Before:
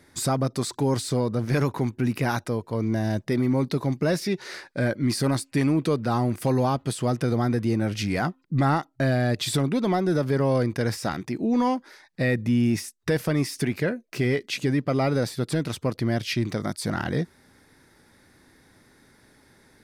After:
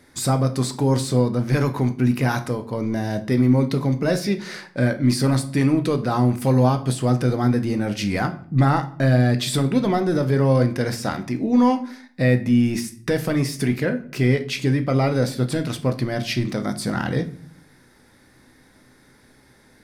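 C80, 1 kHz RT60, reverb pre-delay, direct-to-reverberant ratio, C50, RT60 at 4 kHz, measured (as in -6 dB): 19.0 dB, 0.45 s, 4 ms, 7.0 dB, 14.0 dB, 0.40 s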